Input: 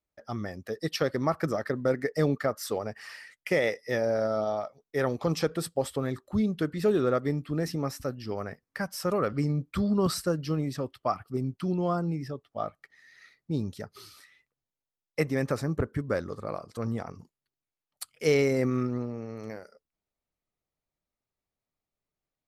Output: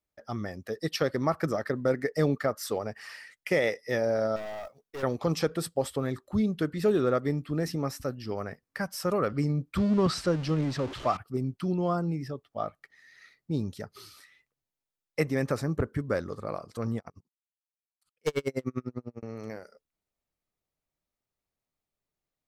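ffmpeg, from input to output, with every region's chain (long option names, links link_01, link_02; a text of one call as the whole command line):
ffmpeg -i in.wav -filter_complex "[0:a]asettb=1/sr,asplit=3[link_01][link_02][link_03];[link_01]atrim=end=4.364[link_04];[link_02]atrim=start=4.36:end=5.03,asetpts=PTS-STARTPTS,afade=type=in:duration=0.004:curve=qsin,afade=type=out:start_time=0.666:duration=0.004:curve=qsin,aeval=exprs='(tanh(56.2*val(0)+0.25)-tanh(0.25))/56.2':channel_layout=same,acrusher=bits=6:mode=log:mix=0:aa=0.000001[link_05];[link_03]atrim=start=5.026[link_06];[link_04][link_05]acrossfade=duration=0.004:curve1=hsin:curve2=qsin[link_07];[link_07][link_06]acrossfade=duration=0.004:curve1=qsin:curve2=hsin,asettb=1/sr,asplit=3[link_08][link_09][link_10];[link_08]atrim=end=9.774[link_11];[link_09]atrim=start=9.77:end=11.17,asetpts=PTS-STARTPTS,afade=type=in:duration=0.004:curve=qsin,afade=type=out:start_time=1.396:duration=0.004:curve=qsin,aeval=exprs='val(0)+0.5*0.02*sgn(val(0))':channel_layout=same,deesser=0.3,lowpass=5300[link_12];[link_10]atrim=start=11.166[link_13];[link_11][link_12]acrossfade=duration=0.004:curve1=hsin:curve2=qsin[link_14];[link_14][link_13]acrossfade=duration=0.004:curve1=qsin:curve2=hsin,asettb=1/sr,asplit=3[link_15][link_16][link_17];[link_15]atrim=end=16.984[link_18];[link_16]atrim=start=16.98:end=19.23,asetpts=PTS-STARTPTS,afade=type=in:duration=0.004:curve=qsin,afade=type=out:start_time=2.246:duration=0.004:curve=qsin,agate=range=-33dB:threshold=-51dB:ratio=3:release=100:detection=peak,aeval=exprs='0.133*(abs(mod(val(0)/0.133+3,4)-2)-1)':channel_layout=same,aeval=exprs='val(0)*pow(10,-40*(0.5-0.5*cos(2*PI*10*n/s))/20)':channel_layout=same[link_19];[link_17]atrim=start=19.226[link_20];[link_18][link_19]acrossfade=duration=0.004:curve1=hsin:curve2=qsin[link_21];[link_21][link_20]acrossfade=duration=0.004:curve1=qsin:curve2=hsin" out.wav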